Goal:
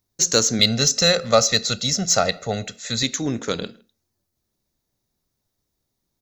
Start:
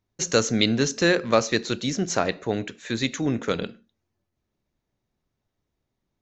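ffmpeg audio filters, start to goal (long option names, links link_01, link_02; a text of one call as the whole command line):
ffmpeg -i in.wav -filter_complex "[0:a]asettb=1/sr,asplit=3[link_01][link_02][link_03];[link_01]atrim=end=0.594[link_04];[link_02]atrim=start=0.59:end=3.03,asetpts=PTS-STARTPTS,afade=type=in:duration=0.004:curve=qsin,afade=type=out:start_time=2.436:duration=0.004:curve=qsin,aecho=1:1:1.5:0.89,atrim=end_sample=107604[link_05];[link_03]atrim=start=3.026[link_06];[link_04][link_05]acrossfade=duration=0.004:curve1=hsin:curve2=qsin[link_07];[link_07][link_06]acrossfade=duration=0.004:curve1=qsin:curve2=hsin,aexciter=amount=2.7:drive=7.2:freq=3900,asplit=2[link_08][link_09];[link_09]adelay=160,highpass=300,lowpass=3400,asoftclip=type=hard:threshold=-10.5dB,volume=-27dB[link_10];[link_08][link_10]amix=inputs=2:normalize=0" out.wav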